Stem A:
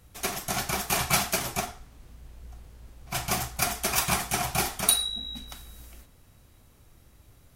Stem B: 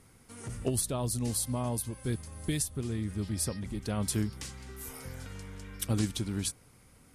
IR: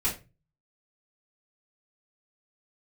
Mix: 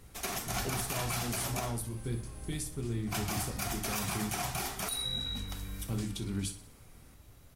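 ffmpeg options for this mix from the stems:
-filter_complex "[0:a]acompressor=threshold=-28dB:ratio=6,volume=-0.5dB[a];[1:a]alimiter=level_in=0.5dB:limit=-24dB:level=0:latency=1:release=83,volume=-0.5dB,volume=-5dB,asplit=3[b][c][d];[c]volume=-10dB[e];[d]volume=-12dB[f];[2:a]atrim=start_sample=2205[g];[e][g]afir=irnorm=-1:irlink=0[h];[f]aecho=0:1:62|124|186|248|310|372|434|496:1|0.54|0.292|0.157|0.085|0.0459|0.0248|0.0134[i];[a][b][h][i]amix=inputs=4:normalize=0,alimiter=limit=-23.5dB:level=0:latency=1:release=53"

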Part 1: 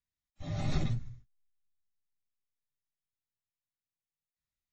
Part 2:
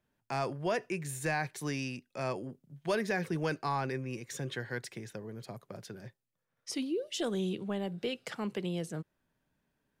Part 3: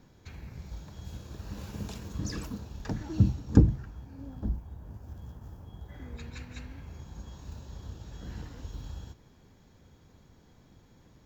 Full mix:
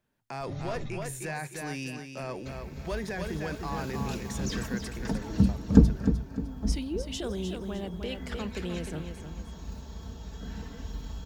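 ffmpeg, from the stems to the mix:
-filter_complex "[0:a]volume=-4.5dB[a];[1:a]volume=1dB,asplit=2[b][c];[c]volume=-9dB[d];[2:a]aecho=1:1:4.5:0.65,adelay=2200,volume=1.5dB,asplit=2[e][f];[f]volume=-9dB[g];[a][b]amix=inputs=2:normalize=0,asoftclip=type=hard:threshold=-22.5dB,alimiter=level_in=3.5dB:limit=-24dB:level=0:latency=1:release=31,volume=-3.5dB,volume=0dB[h];[d][g]amix=inputs=2:normalize=0,aecho=0:1:304|608|912|1216|1520:1|0.36|0.13|0.0467|0.0168[i];[e][h][i]amix=inputs=3:normalize=0"

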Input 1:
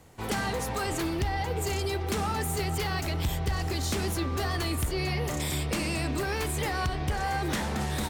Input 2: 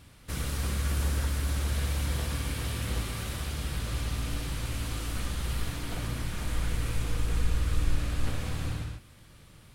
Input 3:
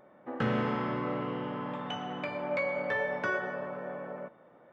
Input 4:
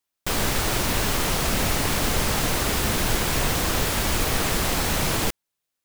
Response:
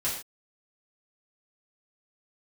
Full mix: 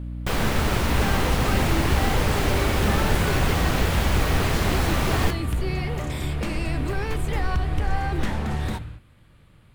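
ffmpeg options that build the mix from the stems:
-filter_complex "[0:a]adelay=700,volume=0.5dB[a];[1:a]equalizer=f=5.7k:t=o:w=0.4:g=-8,volume=-1.5dB[b];[2:a]volume=-4dB[c];[3:a]aeval=exprs='val(0)+0.0251*(sin(2*PI*60*n/s)+sin(2*PI*2*60*n/s)/2+sin(2*PI*3*60*n/s)/3+sin(2*PI*4*60*n/s)/4+sin(2*PI*5*60*n/s)/5)':c=same,volume=0dB[d];[a][b][c][d]amix=inputs=4:normalize=0,bass=f=250:g=2,treble=f=4k:g=-9"

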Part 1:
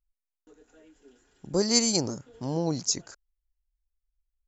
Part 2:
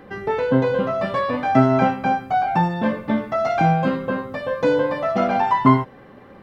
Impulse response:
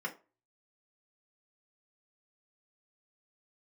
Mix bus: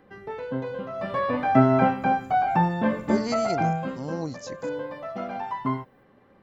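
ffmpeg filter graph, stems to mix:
-filter_complex "[0:a]aemphasis=mode=production:type=50fm,adelay=1550,volume=-3dB[a];[1:a]volume=-2.5dB,afade=t=in:st=0.9:d=0.38:silence=0.316228,afade=t=out:st=3.23:d=0.73:silence=0.298538[b];[a][b]amix=inputs=2:normalize=0,acrossover=split=3000[c][d];[d]acompressor=threshold=-53dB:ratio=4:attack=1:release=60[e];[c][e]amix=inputs=2:normalize=0"

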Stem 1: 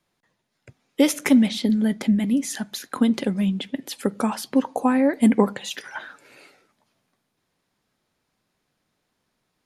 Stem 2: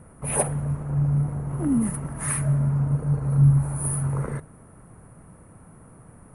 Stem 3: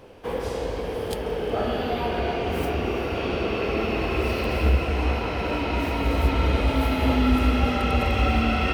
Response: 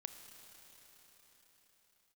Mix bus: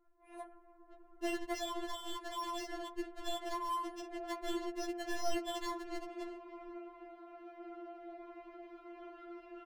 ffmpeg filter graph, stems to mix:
-filter_complex "[0:a]acrusher=samples=36:mix=1:aa=0.000001,adelay=250,volume=-5.5dB[a];[1:a]volume=-17.5dB,asplit=2[b][c];[c]volume=-13.5dB[d];[2:a]highshelf=f=2.4k:g=-11.5,adelay=1950,volume=-18.5dB[e];[3:a]atrim=start_sample=2205[f];[d][f]afir=irnorm=-1:irlink=0[g];[a][b][e][g]amix=inputs=4:normalize=0,volume=28dB,asoftclip=hard,volume=-28dB,adynamicsmooth=sensitivity=7.5:basefreq=1.7k,afftfilt=real='re*4*eq(mod(b,16),0)':imag='im*4*eq(mod(b,16),0)':win_size=2048:overlap=0.75"

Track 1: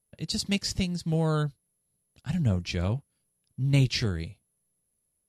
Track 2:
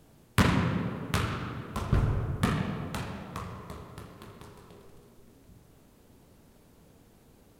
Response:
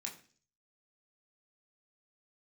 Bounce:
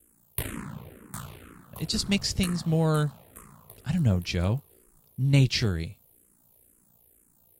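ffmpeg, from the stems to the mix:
-filter_complex "[0:a]adelay=1600,volume=2dB[a];[1:a]aexciter=amount=9.5:drive=5.5:freq=7.7k,aeval=exprs='val(0)*sin(2*PI*29*n/s)':c=same,asplit=2[b][c];[c]afreqshift=-2.1[d];[b][d]amix=inputs=2:normalize=1,volume=-5.5dB[e];[a][e]amix=inputs=2:normalize=0"

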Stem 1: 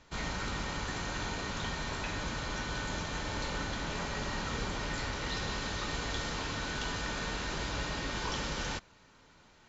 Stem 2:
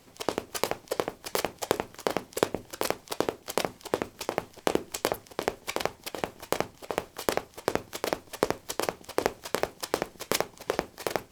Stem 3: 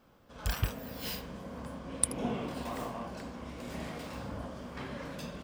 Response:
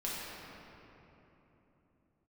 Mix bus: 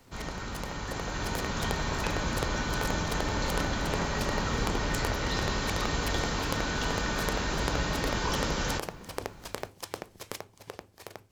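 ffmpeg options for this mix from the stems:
-filter_complex "[0:a]equalizer=f=3k:t=o:w=1.9:g=-4,aexciter=amount=4.1:drive=6.6:freq=11k,volume=-1.5dB,asplit=2[a][b];[b]volume=-18.5dB[c];[1:a]equalizer=f=97:t=o:w=0.65:g=13,acompressor=threshold=-38dB:ratio=3,volume=-5dB[d];[3:a]atrim=start_sample=2205[e];[c][e]afir=irnorm=-1:irlink=0[f];[a][d][f]amix=inputs=3:normalize=0,dynaudnorm=f=140:g=17:m=7.5dB"

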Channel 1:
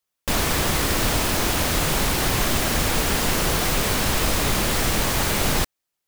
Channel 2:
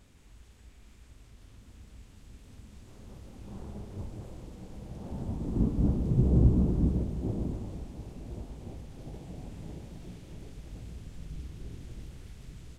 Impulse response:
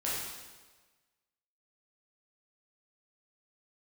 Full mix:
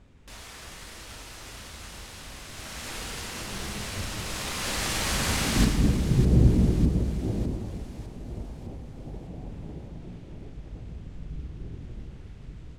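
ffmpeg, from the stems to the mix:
-filter_complex "[0:a]lowpass=9.5k,tiltshelf=f=970:g=-4.5,alimiter=limit=-19dB:level=0:latency=1,volume=-6dB,afade=t=in:st=2.43:d=0.49:silence=0.421697,afade=t=in:st=4.18:d=0.74:silence=0.375837,asplit=3[a][b][c];[b]volume=-3dB[d];[c]volume=-8dB[e];[1:a]aemphasis=mode=reproduction:type=75fm,volume=1.5dB,asplit=2[f][g];[g]volume=-14.5dB[h];[2:a]atrim=start_sample=2205[i];[d][h]amix=inputs=2:normalize=0[j];[j][i]afir=irnorm=-1:irlink=0[k];[e]aecho=0:1:604|1208|1812|2416|3020|3624|4228|4832:1|0.56|0.314|0.176|0.0983|0.0551|0.0308|0.0173[l];[a][f][k][l]amix=inputs=4:normalize=0"

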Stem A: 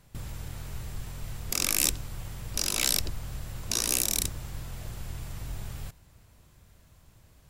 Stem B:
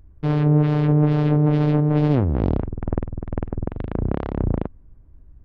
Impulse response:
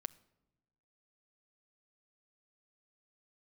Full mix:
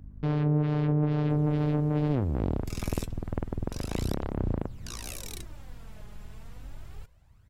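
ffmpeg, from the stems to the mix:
-filter_complex "[0:a]highshelf=f=4k:g=-11.5,aphaser=in_gain=1:out_gain=1:delay=4.8:decay=0.56:speed=0.3:type=sinusoidal,adelay=1150,volume=-6.5dB[a];[1:a]aeval=exprs='val(0)+0.00631*(sin(2*PI*50*n/s)+sin(2*PI*2*50*n/s)/2+sin(2*PI*3*50*n/s)/3+sin(2*PI*4*50*n/s)/4+sin(2*PI*5*50*n/s)/5)':c=same,volume=-1dB[b];[a][b]amix=inputs=2:normalize=0,acompressor=threshold=-36dB:ratio=1.5"

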